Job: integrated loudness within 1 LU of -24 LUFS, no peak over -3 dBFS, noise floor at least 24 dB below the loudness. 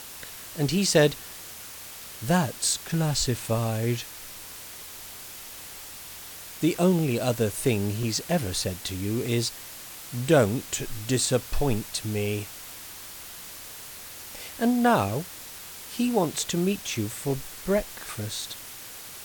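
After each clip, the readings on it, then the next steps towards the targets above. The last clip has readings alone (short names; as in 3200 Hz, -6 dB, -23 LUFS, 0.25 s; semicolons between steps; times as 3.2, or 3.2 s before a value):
dropouts 6; longest dropout 1.4 ms; noise floor -42 dBFS; noise floor target -51 dBFS; loudness -26.5 LUFS; peak -7.5 dBFS; loudness target -24.0 LUFS
-> interpolate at 6.99/8.03/9.26/16.38/16.95/18.28, 1.4 ms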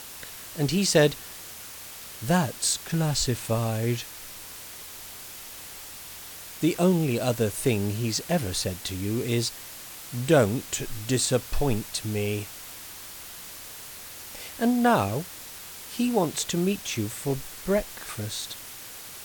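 dropouts 0; noise floor -42 dBFS; noise floor target -51 dBFS
-> denoiser 9 dB, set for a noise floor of -42 dBFS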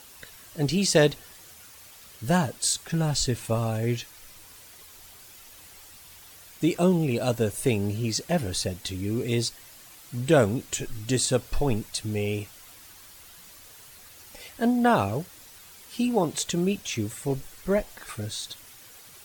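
noise floor -49 dBFS; noise floor target -51 dBFS
-> denoiser 6 dB, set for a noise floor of -49 dBFS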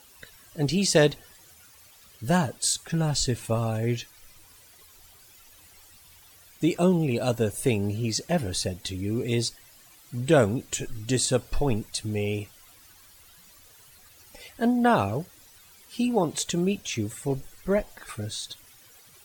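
noise floor -54 dBFS; loudness -26.5 LUFS; peak -7.5 dBFS; loudness target -24.0 LUFS
-> gain +2.5 dB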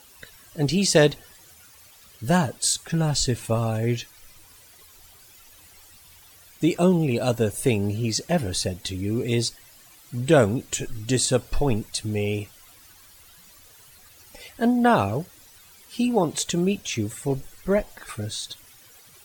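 loudness -24.0 LUFS; peak -5.0 dBFS; noise floor -51 dBFS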